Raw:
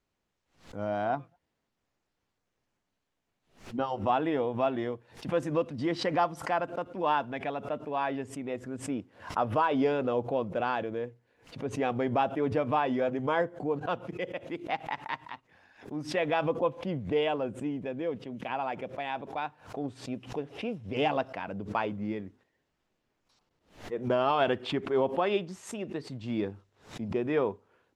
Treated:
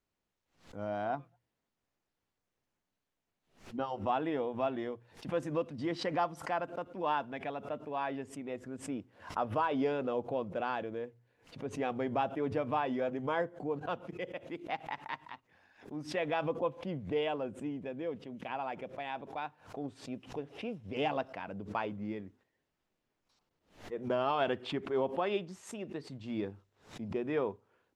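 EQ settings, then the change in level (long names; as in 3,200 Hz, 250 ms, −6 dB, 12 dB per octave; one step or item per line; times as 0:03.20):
mains-hum notches 60/120 Hz
−5.0 dB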